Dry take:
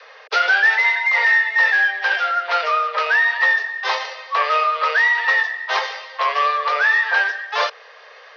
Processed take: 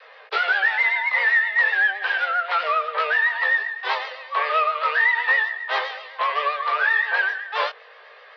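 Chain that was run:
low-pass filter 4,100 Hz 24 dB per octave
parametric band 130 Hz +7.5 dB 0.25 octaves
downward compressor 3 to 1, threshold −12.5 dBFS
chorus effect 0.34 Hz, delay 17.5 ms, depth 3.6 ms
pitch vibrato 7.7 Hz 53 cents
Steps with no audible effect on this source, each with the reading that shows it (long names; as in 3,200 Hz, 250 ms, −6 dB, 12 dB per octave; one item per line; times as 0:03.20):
parametric band 130 Hz: nothing at its input below 380 Hz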